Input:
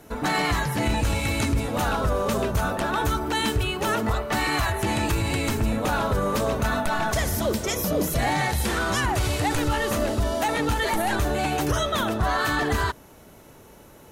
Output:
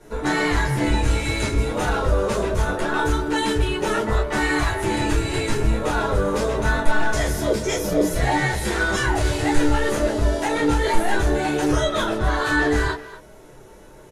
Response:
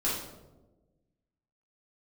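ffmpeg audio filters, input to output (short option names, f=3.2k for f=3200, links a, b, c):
-filter_complex "[0:a]lowpass=f=11k:w=0.5412,lowpass=f=11k:w=1.3066,asplit=2[a][b];[b]adelay=240,highpass=300,lowpass=3.4k,asoftclip=type=hard:threshold=-23.5dB,volume=-13dB[c];[a][c]amix=inputs=2:normalize=0[d];[1:a]atrim=start_sample=2205,atrim=end_sample=3528,asetrate=61740,aresample=44100[e];[d][e]afir=irnorm=-1:irlink=0,volume=-2.5dB"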